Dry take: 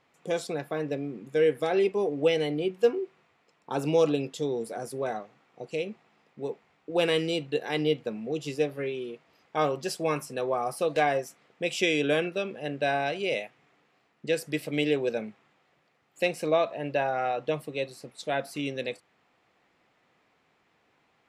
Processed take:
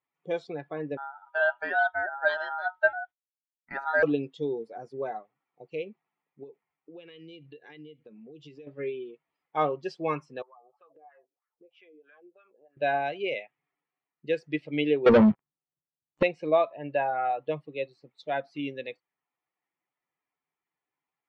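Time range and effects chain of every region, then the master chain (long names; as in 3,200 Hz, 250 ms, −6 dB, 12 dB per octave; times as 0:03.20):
0:00.97–0:04.03: downward expander −49 dBFS + high-shelf EQ 11,000 Hz −4 dB + ring modulation 1,100 Hz
0:06.43–0:08.67: dynamic equaliser 830 Hz, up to −7 dB, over −44 dBFS, Q 1.9 + downward compressor 10 to 1, threshold −36 dBFS
0:10.42–0:12.77: LFO wah 3.1 Hz 370–1,500 Hz, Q 2.9 + downward compressor, threshold −44 dBFS
0:15.06–0:16.23: spectral tilt −3.5 dB per octave + leveller curve on the samples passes 5
whole clip: spectral dynamics exaggerated over time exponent 1.5; Bessel low-pass filter 2,500 Hz, order 4; low-shelf EQ 140 Hz −8 dB; level +4 dB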